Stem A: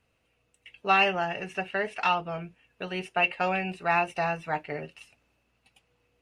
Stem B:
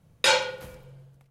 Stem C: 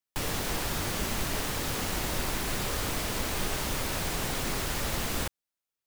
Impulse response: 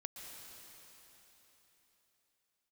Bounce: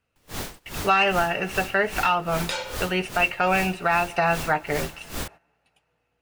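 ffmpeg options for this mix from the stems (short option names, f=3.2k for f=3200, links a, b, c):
-filter_complex "[0:a]equalizer=f=1.4k:t=o:w=0.36:g=5.5,volume=1.5dB,asplit=2[a][b];[b]volume=-19dB[c];[1:a]acompressor=threshold=-24dB:ratio=2.5,adelay=2250,volume=-10.5dB[d];[2:a]aeval=exprs='val(0)*pow(10,-23*(0.5-0.5*cos(2*PI*2.5*n/s))/20)':c=same,volume=-4.5dB[e];[3:a]atrim=start_sample=2205[f];[c][f]afir=irnorm=-1:irlink=0[g];[a][d][e][g]amix=inputs=4:normalize=0,acontrast=59,agate=range=-13dB:threshold=-43dB:ratio=16:detection=peak,alimiter=limit=-11dB:level=0:latency=1:release=175"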